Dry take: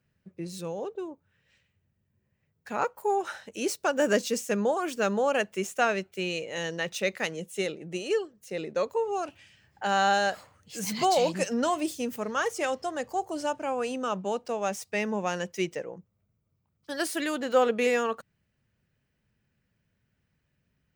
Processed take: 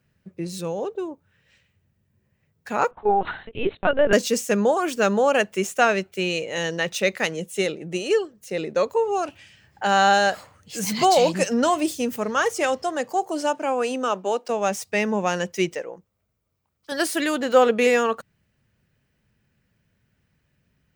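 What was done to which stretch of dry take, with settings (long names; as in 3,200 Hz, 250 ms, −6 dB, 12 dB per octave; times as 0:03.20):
0:02.91–0:04.13: linear-prediction vocoder at 8 kHz pitch kept
0:12.83–0:14.48: high-pass filter 130 Hz → 290 Hz 24 dB per octave
0:15.75–0:16.92: parametric band 140 Hz −12 dB 2 octaves
whole clip: de-essing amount 45%; level +6.5 dB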